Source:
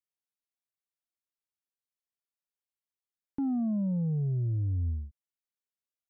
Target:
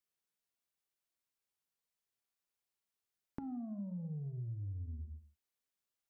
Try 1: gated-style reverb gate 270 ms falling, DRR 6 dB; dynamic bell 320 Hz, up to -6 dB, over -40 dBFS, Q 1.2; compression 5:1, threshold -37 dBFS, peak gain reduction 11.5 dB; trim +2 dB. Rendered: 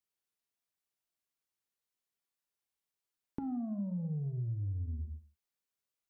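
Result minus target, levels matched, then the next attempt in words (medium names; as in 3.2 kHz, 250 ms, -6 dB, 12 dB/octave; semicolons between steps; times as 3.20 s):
compression: peak gain reduction -5.5 dB
gated-style reverb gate 270 ms falling, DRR 6 dB; dynamic bell 320 Hz, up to -6 dB, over -40 dBFS, Q 1.2; compression 5:1, threshold -44 dBFS, peak gain reduction 17 dB; trim +2 dB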